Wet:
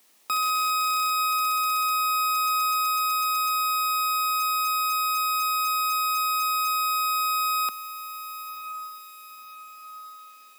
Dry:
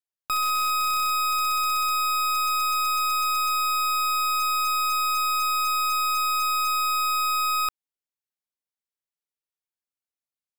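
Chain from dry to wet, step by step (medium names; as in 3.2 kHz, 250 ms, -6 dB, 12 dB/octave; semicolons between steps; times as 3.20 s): word length cut 10-bit, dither triangular; steep high-pass 190 Hz 48 dB/octave; band-stop 1.5 kHz, Q 8.7; on a send: echo that smears into a reverb 997 ms, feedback 48%, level -12 dB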